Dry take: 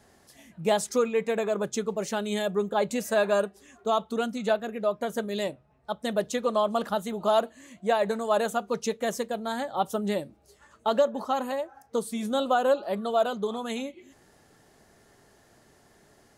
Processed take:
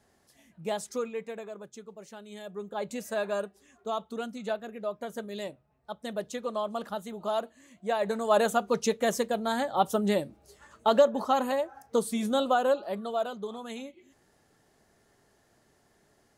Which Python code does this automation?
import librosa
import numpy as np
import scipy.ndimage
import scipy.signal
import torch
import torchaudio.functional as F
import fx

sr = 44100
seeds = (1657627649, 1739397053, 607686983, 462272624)

y = fx.gain(x, sr, db=fx.line((1.05, -8.0), (1.68, -16.5), (2.28, -16.5), (2.89, -7.0), (7.76, -7.0), (8.39, 2.0), (12.12, 2.0), (13.34, -7.0)))